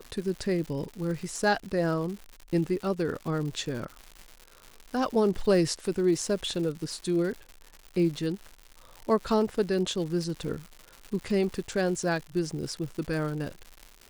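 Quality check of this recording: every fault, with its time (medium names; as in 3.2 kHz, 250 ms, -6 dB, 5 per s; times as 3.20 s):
crackle 200 per s -36 dBFS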